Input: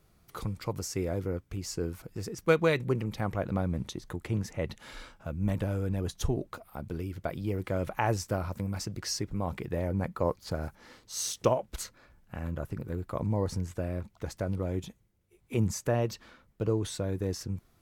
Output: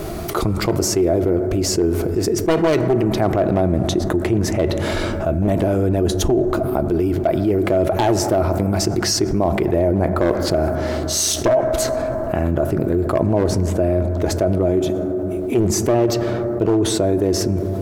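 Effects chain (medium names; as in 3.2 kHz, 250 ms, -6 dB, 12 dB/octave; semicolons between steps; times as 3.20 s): one-sided wavefolder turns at -23.5 dBFS; small resonant body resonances 360/640 Hz, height 15 dB, ringing for 35 ms; reverberation RT60 2.5 s, pre-delay 6 ms, DRR 13 dB; level flattener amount 70%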